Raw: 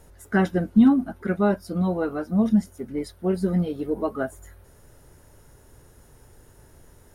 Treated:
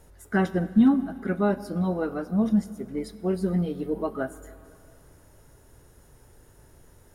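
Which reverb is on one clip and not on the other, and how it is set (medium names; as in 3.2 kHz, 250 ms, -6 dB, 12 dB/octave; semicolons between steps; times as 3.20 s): plate-style reverb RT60 2.6 s, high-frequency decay 0.85×, DRR 14.5 dB; trim -2.5 dB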